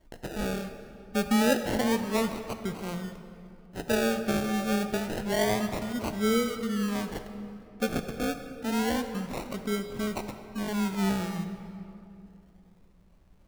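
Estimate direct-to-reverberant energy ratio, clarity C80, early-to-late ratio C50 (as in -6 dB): 7.5 dB, 9.5 dB, 8.5 dB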